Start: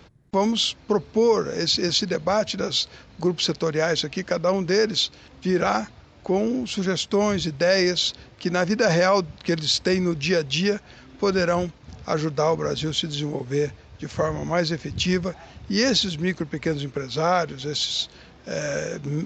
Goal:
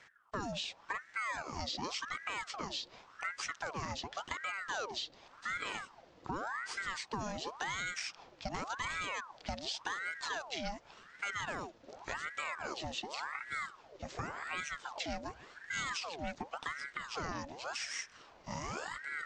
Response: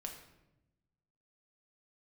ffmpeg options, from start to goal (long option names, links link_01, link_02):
-filter_complex "[0:a]acrossover=split=230|4700[link_01][link_02][link_03];[link_01]acompressor=threshold=-36dB:ratio=4[link_04];[link_02]acompressor=threshold=-29dB:ratio=4[link_05];[link_03]acompressor=threshold=-40dB:ratio=4[link_06];[link_04][link_05][link_06]amix=inputs=3:normalize=0,aeval=exprs='val(0)*sin(2*PI*1100*n/s+1100*0.65/0.89*sin(2*PI*0.89*n/s))':channel_layout=same,volume=-7.5dB"